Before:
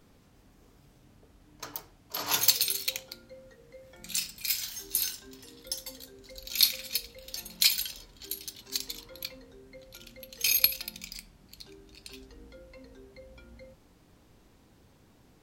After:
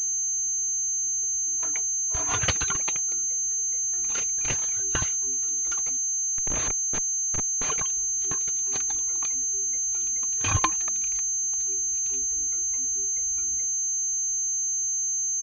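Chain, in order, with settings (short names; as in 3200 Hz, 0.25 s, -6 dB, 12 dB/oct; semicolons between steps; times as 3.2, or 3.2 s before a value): reverb removal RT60 0.79 s; comb 2.9 ms, depth 71%; 5.97–7.7 Schmitt trigger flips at -30 dBFS; pulse-width modulation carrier 6300 Hz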